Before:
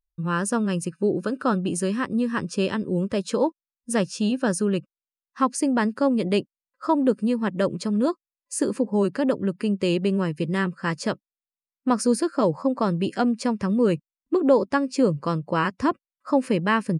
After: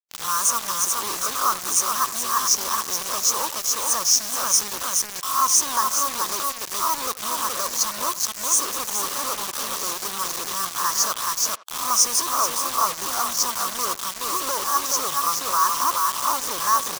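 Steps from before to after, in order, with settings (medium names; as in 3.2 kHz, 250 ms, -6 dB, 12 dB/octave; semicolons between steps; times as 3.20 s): reverse spectral sustain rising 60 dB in 0.35 s; delay 424 ms -6.5 dB; power-law waveshaper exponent 0.5; two resonant band-passes 2.6 kHz, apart 2.4 oct; word length cut 6-bit, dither none; treble shelf 3.3 kHz +12 dB; speakerphone echo 80 ms, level -16 dB; harmonic-percussive split percussive +5 dB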